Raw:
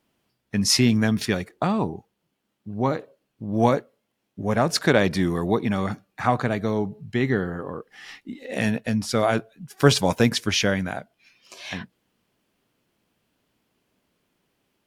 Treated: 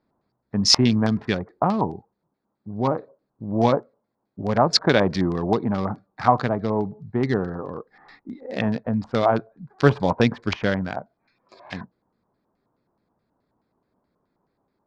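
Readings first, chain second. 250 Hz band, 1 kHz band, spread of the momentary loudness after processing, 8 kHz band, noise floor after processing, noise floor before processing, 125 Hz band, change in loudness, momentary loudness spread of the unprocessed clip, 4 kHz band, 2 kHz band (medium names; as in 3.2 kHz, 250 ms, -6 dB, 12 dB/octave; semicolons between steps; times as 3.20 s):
0.0 dB, +3.0 dB, 18 LU, -3.0 dB, -77 dBFS, -77 dBFS, 0.0 dB, +1.0 dB, 16 LU, +2.0 dB, -2.5 dB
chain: local Wiener filter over 15 samples; LFO low-pass square 4.7 Hz 990–4800 Hz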